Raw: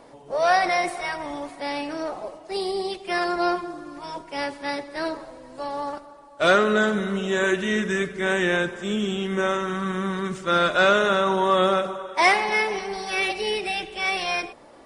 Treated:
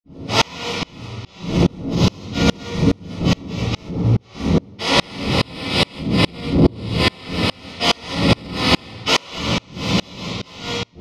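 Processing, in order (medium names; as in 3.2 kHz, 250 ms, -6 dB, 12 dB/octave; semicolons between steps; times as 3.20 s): spectral contrast reduction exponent 0.22; wind noise 140 Hz -21 dBFS; gate -29 dBFS, range -19 dB; low-pass 4.3 kHz 12 dB/octave; level-controlled noise filter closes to 2.8 kHz, open at -21 dBFS; Butterworth band-stop 1.2 kHz, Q 3.8; reverberation RT60 0.90 s, pre-delay 46 ms; speed mistake 33 rpm record played at 45 rpm; loudness maximiser +4.5 dB; sawtooth tremolo in dB swelling 2.4 Hz, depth 33 dB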